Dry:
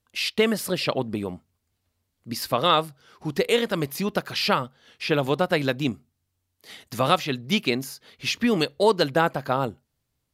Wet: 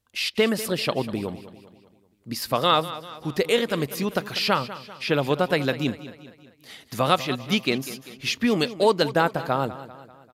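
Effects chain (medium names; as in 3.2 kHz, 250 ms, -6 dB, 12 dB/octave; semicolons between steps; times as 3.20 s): feedback delay 196 ms, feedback 50%, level -15 dB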